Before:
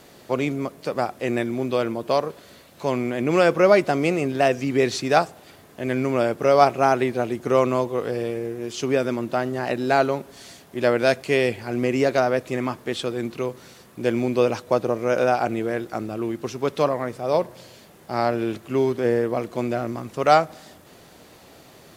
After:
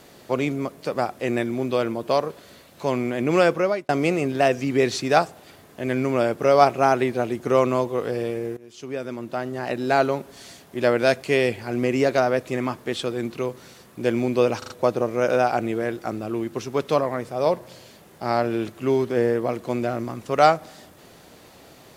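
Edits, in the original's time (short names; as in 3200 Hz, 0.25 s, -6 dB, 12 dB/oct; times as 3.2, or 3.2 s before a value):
3.43–3.89 fade out
8.57–10.06 fade in, from -18 dB
14.58 stutter 0.04 s, 4 plays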